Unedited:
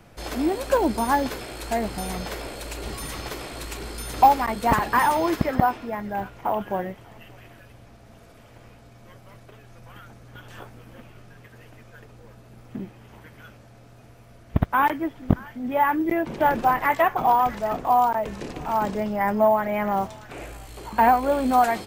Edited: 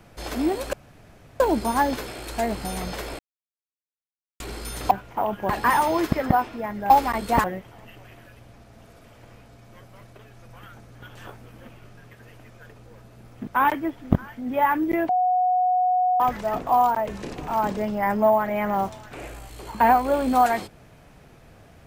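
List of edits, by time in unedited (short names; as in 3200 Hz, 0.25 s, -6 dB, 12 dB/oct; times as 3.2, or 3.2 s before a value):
0.73 insert room tone 0.67 s
2.52–3.73 mute
4.24–4.78 swap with 6.19–6.77
12.8–14.65 cut
16.27–17.38 bleep 732 Hz -17.5 dBFS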